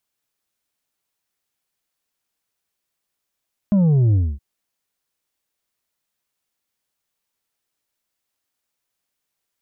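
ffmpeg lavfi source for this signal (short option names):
-f lavfi -i "aevalsrc='0.224*clip((0.67-t)/0.25,0,1)*tanh(1.78*sin(2*PI*210*0.67/log(65/210)*(exp(log(65/210)*t/0.67)-1)))/tanh(1.78)':d=0.67:s=44100"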